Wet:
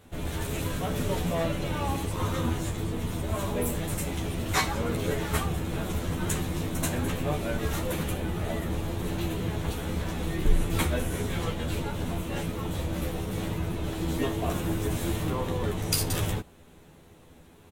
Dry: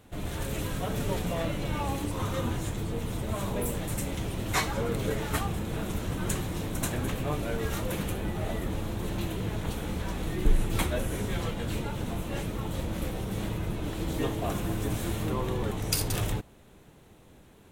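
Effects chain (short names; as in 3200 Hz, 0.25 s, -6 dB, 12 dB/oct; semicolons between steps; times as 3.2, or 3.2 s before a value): doubler 12 ms -3 dB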